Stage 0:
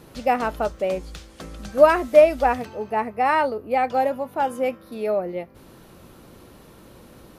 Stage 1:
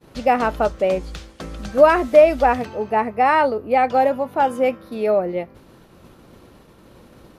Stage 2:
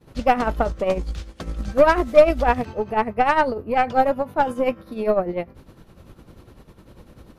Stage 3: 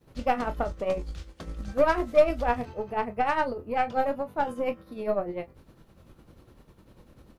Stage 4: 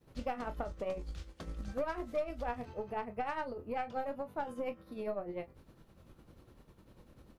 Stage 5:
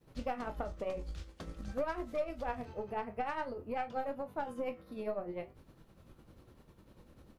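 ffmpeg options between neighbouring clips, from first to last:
-filter_complex "[0:a]asplit=2[a][b];[b]alimiter=limit=-13dB:level=0:latency=1,volume=1dB[c];[a][c]amix=inputs=2:normalize=0,highshelf=f=8.3k:g=-9,agate=range=-33dB:threshold=-35dB:ratio=3:detection=peak,volume=-1.5dB"
-af "tremolo=f=10:d=0.67,lowshelf=f=130:g=10.5,aeval=exprs='0.794*(cos(1*acos(clip(val(0)/0.794,-1,1)))-cos(1*PI/2))+0.0562*(cos(6*acos(clip(val(0)/0.794,-1,1)))-cos(6*PI/2))':c=same"
-af "acrusher=bits=11:mix=0:aa=0.000001,aecho=1:1:25|39:0.299|0.133,volume=-8dB"
-af "acompressor=threshold=-30dB:ratio=3,volume=-5dB"
-af "flanger=delay=5.7:depth=8.3:regen=-79:speed=0.51:shape=triangular,volume=4.5dB"

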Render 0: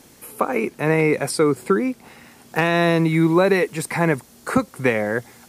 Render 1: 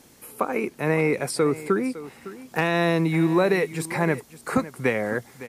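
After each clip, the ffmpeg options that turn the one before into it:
-af "aecho=1:1:558:0.158,volume=-4dB"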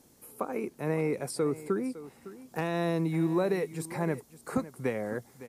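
-af "equalizer=f=2.3k:t=o:w=2:g=-7.5,volume=-6.5dB"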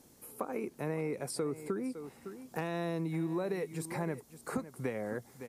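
-af "acompressor=threshold=-34dB:ratio=2.5"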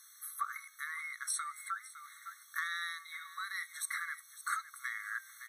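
-af "bandreject=f=314.5:t=h:w=4,bandreject=f=629:t=h:w=4,bandreject=f=943.5:t=h:w=4,bandreject=f=1.258k:t=h:w=4,bandreject=f=1.5725k:t=h:w=4,bandreject=f=1.887k:t=h:w=4,bandreject=f=2.2015k:t=h:w=4,bandreject=f=2.516k:t=h:w=4,bandreject=f=2.8305k:t=h:w=4,bandreject=f=3.145k:t=h:w=4,bandreject=f=3.4595k:t=h:w=4,bandreject=f=3.774k:t=h:w=4,bandreject=f=4.0885k:t=h:w=4,bandreject=f=4.403k:t=h:w=4,bandreject=f=4.7175k:t=h:w=4,bandreject=f=5.032k:t=h:w=4,bandreject=f=5.3465k:t=h:w=4,bandreject=f=5.661k:t=h:w=4,bandreject=f=5.9755k:t=h:w=4,bandreject=f=6.29k:t=h:w=4,bandreject=f=6.6045k:t=h:w=4,bandreject=f=6.919k:t=h:w=4,bandreject=f=7.2335k:t=h:w=4,bandreject=f=7.548k:t=h:w=4,bandreject=f=7.8625k:t=h:w=4,bandreject=f=8.177k:t=h:w=4,bandreject=f=8.4915k:t=h:w=4,bandreject=f=8.806k:t=h:w=4,bandreject=f=9.1205k:t=h:w=4,bandreject=f=9.435k:t=h:w=4,bandreject=f=9.7495k:t=h:w=4,afftfilt=real='re*eq(mod(floor(b*sr/1024/1100),2),1)':imag='im*eq(mod(floor(b*sr/1024/1100),2),1)':win_size=1024:overlap=0.75,volume=9.5dB"

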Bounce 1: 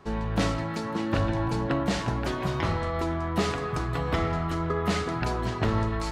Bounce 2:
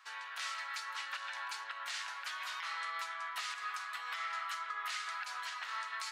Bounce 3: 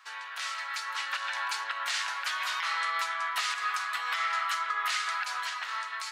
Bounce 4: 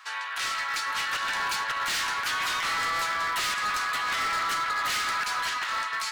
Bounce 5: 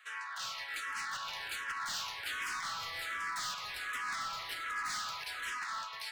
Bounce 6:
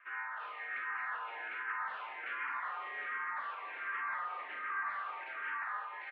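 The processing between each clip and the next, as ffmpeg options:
-af "highpass=f=1.3k:w=0.5412,highpass=f=1.3k:w=1.3066,alimiter=level_in=5.5dB:limit=-24dB:level=0:latency=1:release=137,volume=-5.5dB"
-af "dynaudnorm=f=270:g=7:m=5dB,volume=4.5dB"
-af "volume=32.5dB,asoftclip=hard,volume=-32.5dB,volume=7dB"
-filter_complex "[0:a]acrossover=split=200|1200[a][b][c];[b]alimiter=level_in=10.5dB:limit=-24dB:level=0:latency=1,volume=-10.5dB[d];[a][d][c]amix=inputs=3:normalize=0,asplit=2[e][f];[f]afreqshift=-1.3[g];[e][g]amix=inputs=2:normalize=1,volume=-6.5dB"
-filter_complex "[0:a]asplit=2[a][b];[b]aecho=0:1:40|54:0.376|0.335[c];[a][c]amix=inputs=2:normalize=0,highpass=f=410:t=q:w=0.5412,highpass=f=410:t=q:w=1.307,lowpass=f=2.4k:t=q:w=0.5176,lowpass=f=2.4k:t=q:w=0.7071,lowpass=f=2.4k:t=q:w=1.932,afreqshift=-87"

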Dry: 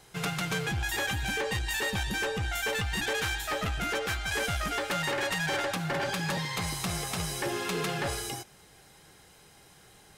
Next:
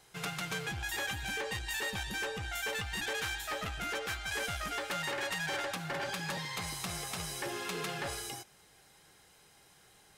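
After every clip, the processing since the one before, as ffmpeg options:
-af "lowshelf=f=470:g=-5,volume=-4.5dB"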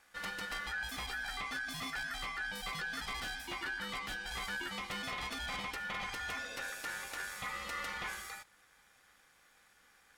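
-af "tiltshelf=f=680:g=4.5,aeval=exprs='val(0)*sin(2*PI*1600*n/s)':c=same"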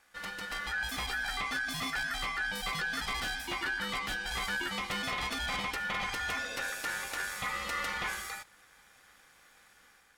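-af "dynaudnorm=f=410:g=3:m=5.5dB"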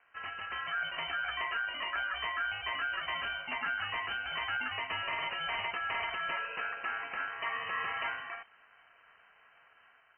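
-af "lowpass=f=2.6k:t=q:w=0.5098,lowpass=f=2.6k:t=q:w=0.6013,lowpass=f=2.6k:t=q:w=0.9,lowpass=f=2.6k:t=q:w=2.563,afreqshift=-3100"

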